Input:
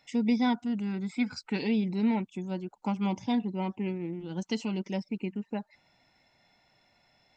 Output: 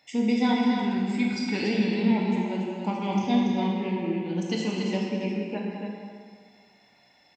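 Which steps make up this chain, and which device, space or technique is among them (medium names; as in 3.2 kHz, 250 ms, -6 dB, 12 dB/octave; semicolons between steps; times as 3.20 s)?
stadium PA (high-pass 170 Hz 6 dB/octave; peaking EQ 1.7 kHz +4 dB 0.25 oct; loudspeakers at several distances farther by 71 m -11 dB, 97 m -6 dB; reverberation RT60 1.8 s, pre-delay 18 ms, DRR -1 dB); peaking EQ 1.4 kHz -5.5 dB 0.43 oct; trim +2 dB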